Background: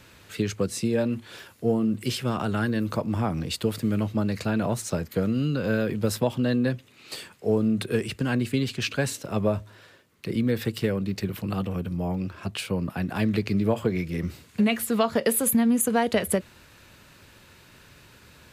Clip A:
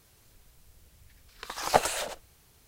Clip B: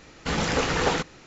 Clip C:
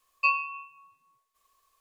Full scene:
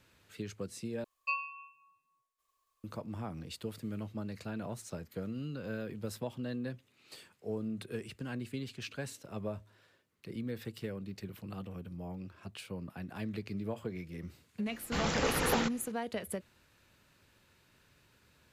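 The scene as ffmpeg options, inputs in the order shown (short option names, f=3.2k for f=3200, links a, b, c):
-filter_complex "[0:a]volume=-14.5dB,asplit=2[a][b];[a]atrim=end=1.044[c];[3:a]atrim=end=1.8,asetpts=PTS-STARTPTS,volume=-10dB[d];[b]atrim=start=2.836[e];[2:a]atrim=end=1.26,asetpts=PTS-STARTPTS,volume=-7dB,afade=t=in:d=0.004:c=hsin,afade=t=out:st=1.256:d=0.004:c=hsin,adelay=14660[f];[c][d]acrossfade=d=0.004:c1=hsin:c2=hsin[g];[g][e]acrossfade=d=0.004:c1=hsin:c2=hsin[h];[h][f]amix=inputs=2:normalize=0"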